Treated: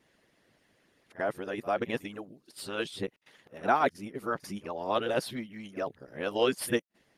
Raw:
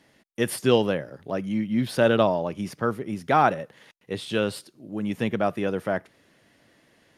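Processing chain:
played backwards from end to start
harmonic and percussive parts rebalanced harmonic −17 dB
echo ahead of the sound 45 ms −19 dB
level −2.5 dB

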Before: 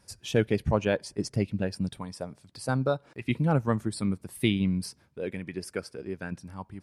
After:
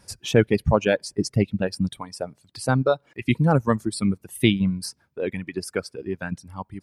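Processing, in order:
reverb reduction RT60 1.4 s
level +7 dB

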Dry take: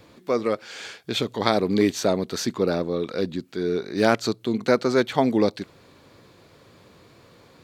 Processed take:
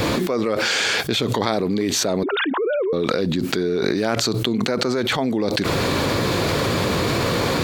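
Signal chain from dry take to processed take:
0:02.23–0:02.93: three sine waves on the formant tracks
envelope flattener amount 100%
level −5.5 dB

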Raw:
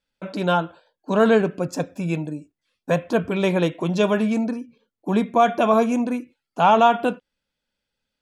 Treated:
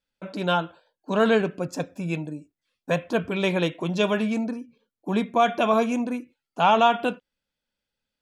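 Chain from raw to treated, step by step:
dynamic equaliser 3,100 Hz, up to +6 dB, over −37 dBFS, Q 0.78
level −4 dB

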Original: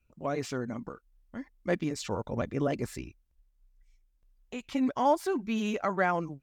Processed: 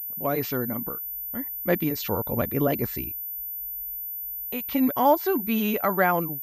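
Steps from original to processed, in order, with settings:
switching amplifier with a slow clock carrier 14,000 Hz
level +5.5 dB

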